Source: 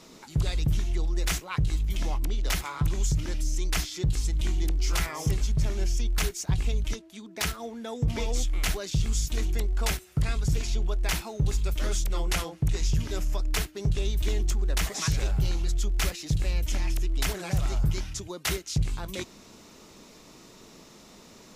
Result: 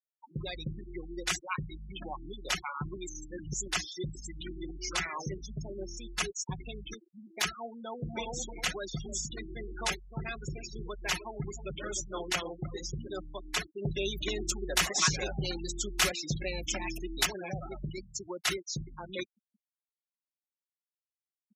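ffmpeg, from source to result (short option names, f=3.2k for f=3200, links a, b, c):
-filter_complex "[0:a]asplit=3[a][b][c];[a]afade=t=out:st=7.98:d=0.02[d];[b]asplit=2[e][f];[f]adelay=306,lowpass=f=1.4k:p=1,volume=-8dB,asplit=2[g][h];[h]adelay=306,lowpass=f=1.4k:p=1,volume=0.32,asplit=2[i][j];[j]adelay=306,lowpass=f=1.4k:p=1,volume=0.32,asplit=2[k][l];[l]adelay=306,lowpass=f=1.4k:p=1,volume=0.32[m];[e][g][i][k][m]amix=inputs=5:normalize=0,afade=t=in:st=7.98:d=0.02,afade=t=out:st=13.19:d=0.02[n];[c]afade=t=in:st=13.19:d=0.02[o];[d][n][o]amix=inputs=3:normalize=0,asplit=5[p][q][r][s][t];[p]atrim=end=2.972[u];[q]atrim=start=2.968:end=3.682,asetpts=PTS-STARTPTS,areverse[v];[r]atrim=start=3.678:end=13.822[w];[s]atrim=start=13.818:end=17.252,asetpts=PTS-STARTPTS,volume=4.5dB[x];[t]atrim=start=17.248[y];[u][v]acrossfade=d=0.004:c1=hsin:c2=hsin[z];[z][w]acrossfade=d=0.004:c1=hsin:c2=hsin[aa];[aa][x]acrossfade=d=0.004:c1=hsin:c2=hsin[ab];[ab][y]acrossfade=d=0.004:c1=hsin:c2=hsin,afftfilt=real='re*gte(hypot(re,im),0.0316)':imag='im*gte(hypot(re,im),0.0316)':win_size=1024:overlap=0.75,highpass=f=490:p=1,aecho=1:1:5.5:0.48"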